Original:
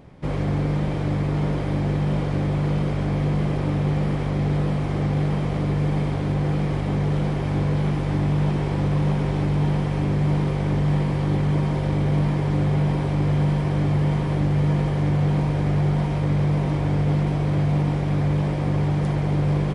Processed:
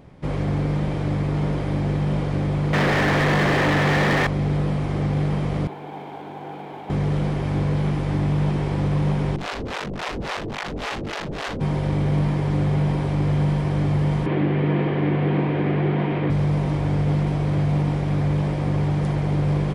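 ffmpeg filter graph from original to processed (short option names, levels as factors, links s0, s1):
-filter_complex "[0:a]asettb=1/sr,asplit=3[s0][s1][s2];[s0]atrim=end=2.734[s3];[s1]atrim=start=2.73:end=4.27,asetpts=PTS-STARTPTS,afade=t=in:d=0.004:c=qsin,afade=t=out:st=1.536:d=0.004:c=qsin,equalizer=f=1800:t=o:w=0.28:g=12.5,asplit=2[s4][s5];[s5]highpass=f=720:p=1,volume=25.1,asoftclip=type=tanh:threshold=0.266[s6];[s4][s6]amix=inputs=2:normalize=0,lowpass=f=3200:p=1,volume=0.501,aeval=exprs='sgn(val(0))*max(abs(val(0))-0.00631,0)':c=same[s7];[s2]atrim=start=4.266[s8];[s3][s7]acrossfade=d=0.004:c1=hsin:c2=qsin[s9];[s9][s8]acrossfade=d=0.004:c1=qsin:c2=hsin,asettb=1/sr,asplit=3[s10][s11][s12];[s10]atrim=end=5.674[s13];[s11]atrim=start=5.67:end=6.9,asetpts=PTS-STARTPTS,afade=t=in:d=0.004:c=qsin,afade=t=out:st=1.226:d=0.004:c=qsin,highpass=470,equalizer=f=550:t=q:w=4:g=-9,equalizer=f=820:t=q:w=4:g=6,equalizer=f=1200:t=q:w=4:g=-9,equalizer=f=1900:t=q:w=4:g=-10,equalizer=f=2700:t=q:w=4:g=-6,lowpass=f=3100:w=0.5412,lowpass=f=3100:w=1.3066,aeval=exprs='sgn(val(0))*max(abs(val(0))-0.00141,0)':c=same[s14];[s12]atrim=start=6.896[s15];[s13][s14]acrossfade=d=0.004:c1=hsin:c2=qsin[s16];[s16][s15]acrossfade=d=0.004:c1=qsin:c2=hsin,asettb=1/sr,asplit=3[s17][s18][s19];[s17]atrim=end=9.364[s20];[s18]atrim=start=9.36:end=11.61,asetpts=PTS-STARTPTS,afade=t=in:d=0.004:c=qsin,afade=t=out:st=2.246:d=0.004:c=qsin,aeval=exprs='(mod(9.44*val(0)+1,2)-1)/9.44':c=same,acrossover=split=490[s21][s22];[s21]aeval=exprs='val(0)*(1-1/2+1/2*cos(2*PI*3.6*n/s))':c=same[s23];[s22]aeval=exprs='val(0)*(1-1/2-1/2*cos(2*PI*3.6*n/s))':c=same[s24];[s23][s24]amix=inputs=2:normalize=0,lowpass=4300[s25];[s19]atrim=start=11.606[s26];[s20][s25]acrossfade=d=0.004:c1=hsin:c2=qsin[s27];[s27][s26]acrossfade=d=0.004:c1=qsin:c2=hsin,asettb=1/sr,asplit=3[s28][s29][s30];[s28]atrim=end=14.264[s31];[s29]atrim=start=14.26:end=16.3,asetpts=PTS-STARTPTS,afade=t=in:d=0.004:c=qsin,afade=t=out:st=2.036:d=0.004:c=qsin,acontrast=70,highpass=230,equalizer=f=340:t=q:w=4:g=4,equalizer=f=580:t=q:w=4:g=-5,equalizer=f=860:t=q:w=4:g=-5,equalizer=f=1300:t=q:w=4:g=-4,lowpass=f=3000:w=0.5412,lowpass=f=3000:w=1.3066[s32];[s30]atrim=start=16.296[s33];[s31][s32]acrossfade=d=0.004:c1=hsin:c2=qsin[s34];[s34][s33]acrossfade=d=0.004:c1=qsin:c2=hsin"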